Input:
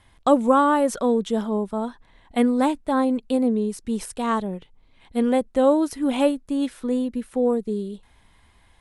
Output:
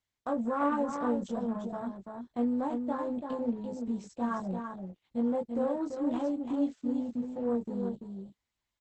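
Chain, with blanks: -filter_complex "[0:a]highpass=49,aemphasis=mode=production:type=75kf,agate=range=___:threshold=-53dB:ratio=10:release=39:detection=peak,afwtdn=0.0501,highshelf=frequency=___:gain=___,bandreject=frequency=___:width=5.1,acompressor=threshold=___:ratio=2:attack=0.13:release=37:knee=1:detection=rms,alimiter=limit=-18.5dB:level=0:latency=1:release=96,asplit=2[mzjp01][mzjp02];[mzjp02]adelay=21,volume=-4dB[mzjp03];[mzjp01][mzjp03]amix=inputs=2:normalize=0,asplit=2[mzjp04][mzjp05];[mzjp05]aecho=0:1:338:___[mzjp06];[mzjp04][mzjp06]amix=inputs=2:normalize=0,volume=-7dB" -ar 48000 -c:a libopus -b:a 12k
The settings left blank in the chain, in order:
-10dB, 6200, -2.5, 420, -24dB, 0.501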